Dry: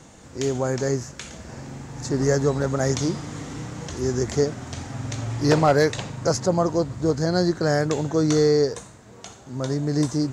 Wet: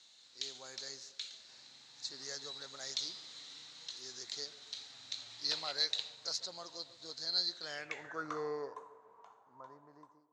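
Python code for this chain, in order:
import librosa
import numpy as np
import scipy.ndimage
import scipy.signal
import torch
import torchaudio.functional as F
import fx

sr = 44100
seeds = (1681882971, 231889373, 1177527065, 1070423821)

y = fx.fade_out_tail(x, sr, length_s=2.75)
y = fx.echo_banded(y, sr, ms=140, feedback_pct=61, hz=590.0, wet_db=-14.5)
y = fx.filter_sweep_bandpass(y, sr, from_hz=4000.0, to_hz=1000.0, start_s=7.56, end_s=8.43, q=7.8)
y = y * librosa.db_to_amplitude(5.5)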